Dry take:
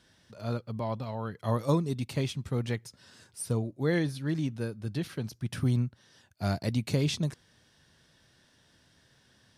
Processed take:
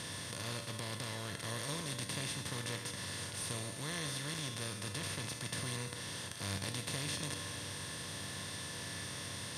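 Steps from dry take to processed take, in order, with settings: spectral levelling over time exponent 0.2; amplifier tone stack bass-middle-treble 5-5-5; feedback comb 97 Hz, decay 1.6 s, harmonics all, mix 80%; trim +9 dB

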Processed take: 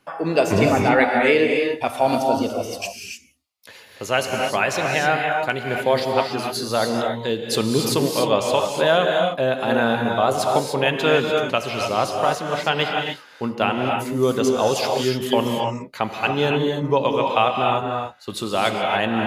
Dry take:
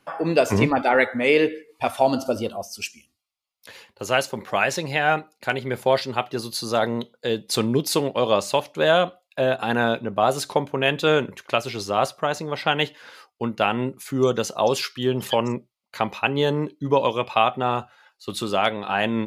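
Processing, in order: gated-style reverb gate 320 ms rising, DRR 1.5 dB

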